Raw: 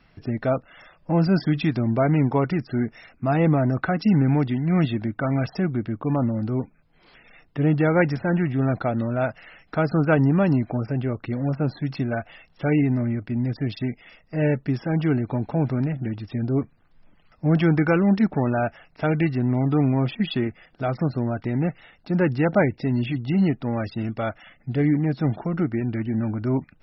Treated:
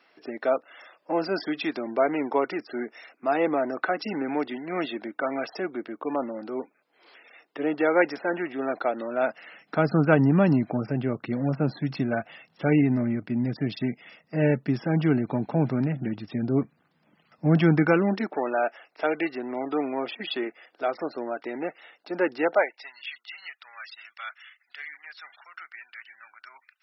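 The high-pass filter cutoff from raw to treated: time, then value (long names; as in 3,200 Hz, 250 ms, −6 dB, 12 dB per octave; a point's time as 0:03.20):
high-pass filter 24 dB per octave
0:09.05 330 Hz
0:09.93 140 Hz
0:17.75 140 Hz
0:18.33 350 Hz
0:22.46 350 Hz
0:22.99 1,400 Hz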